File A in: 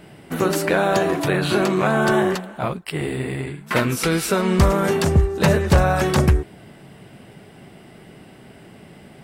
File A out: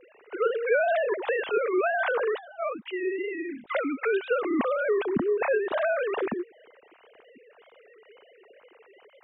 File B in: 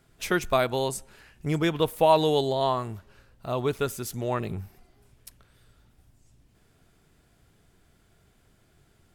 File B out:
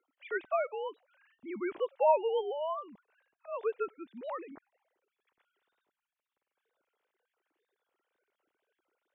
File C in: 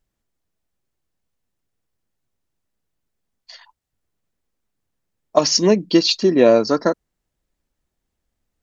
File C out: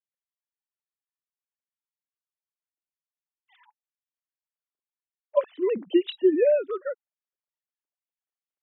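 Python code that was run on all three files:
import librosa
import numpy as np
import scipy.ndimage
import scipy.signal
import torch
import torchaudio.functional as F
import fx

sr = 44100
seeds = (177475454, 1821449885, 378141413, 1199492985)

y = fx.sine_speech(x, sr)
y = fx.wow_flutter(y, sr, seeds[0], rate_hz=2.1, depth_cents=100.0)
y = y * librosa.db_to_amplitude(-8.0)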